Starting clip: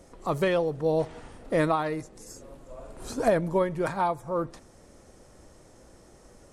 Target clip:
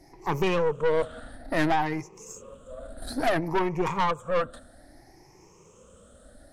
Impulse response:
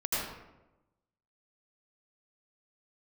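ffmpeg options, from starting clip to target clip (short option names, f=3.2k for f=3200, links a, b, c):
-filter_complex "[0:a]afftfilt=real='re*pow(10,18/40*sin(2*PI*(0.76*log(max(b,1)*sr/1024/100)/log(2)-(0.59)*(pts-256)/sr)))':imag='im*pow(10,18/40*sin(2*PI*(0.76*log(max(b,1)*sr/1024/100)/log(2)-(0.59)*(pts-256)/sr)))':win_size=1024:overlap=0.75,adynamicequalizer=threshold=0.0178:dfrequency=1200:dqfactor=0.72:tfrequency=1200:tqfactor=0.72:attack=5:release=100:ratio=0.375:range=2.5:mode=boostabove:tftype=bell,aeval=exprs='(tanh(10*val(0)+0.65)-tanh(0.65))/10':c=same,acrossover=split=280|5800[a][b][c];[c]acrusher=bits=6:mode=log:mix=0:aa=0.000001[d];[a][b][d]amix=inputs=3:normalize=0"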